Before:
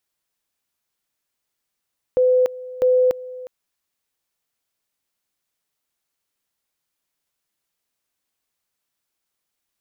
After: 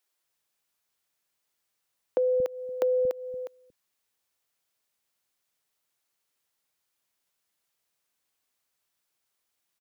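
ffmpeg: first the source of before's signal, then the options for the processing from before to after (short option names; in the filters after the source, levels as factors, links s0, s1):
-f lavfi -i "aevalsrc='pow(10,(-12.5-18.5*gte(mod(t,0.65),0.29))/20)*sin(2*PI*506*t)':d=1.3:s=44100"
-filter_complex "[0:a]lowshelf=f=79:g=-7.5,acompressor=threshold=0.0708:ratio=6,acrossover=split=250[s0][s1];[s0]adelay=230[s2];[s2][s1]amix=inputs=2:normalize=0"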